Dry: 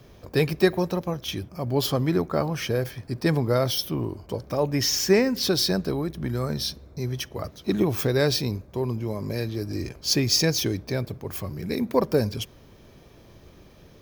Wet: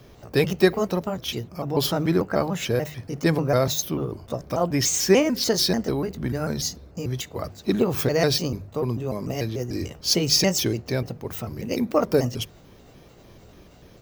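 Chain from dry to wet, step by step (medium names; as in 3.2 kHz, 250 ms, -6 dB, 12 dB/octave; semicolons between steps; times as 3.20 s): pitch shift switched off and on +3 st, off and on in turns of 147 ms; hum notches 50/100/150 Hz; trim +2 dB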